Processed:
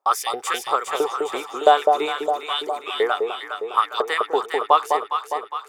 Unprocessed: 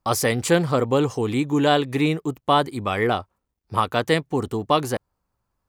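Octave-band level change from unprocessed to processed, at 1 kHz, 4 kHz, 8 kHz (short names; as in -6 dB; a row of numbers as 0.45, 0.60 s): +4.5, +1.0, -3.0 dB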